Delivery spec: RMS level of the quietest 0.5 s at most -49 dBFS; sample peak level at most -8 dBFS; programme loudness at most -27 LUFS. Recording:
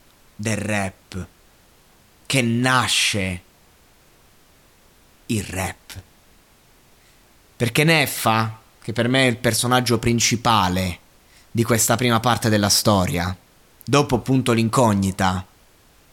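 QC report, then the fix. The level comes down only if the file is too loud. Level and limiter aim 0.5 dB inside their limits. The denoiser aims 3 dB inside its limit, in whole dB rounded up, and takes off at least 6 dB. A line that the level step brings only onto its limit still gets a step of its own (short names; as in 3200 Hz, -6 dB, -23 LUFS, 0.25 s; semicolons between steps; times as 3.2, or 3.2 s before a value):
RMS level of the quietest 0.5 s -54 dBFS: OK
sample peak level -5.0 dBFS: fail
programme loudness -19.5 LUFS: fail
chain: gain -8 dB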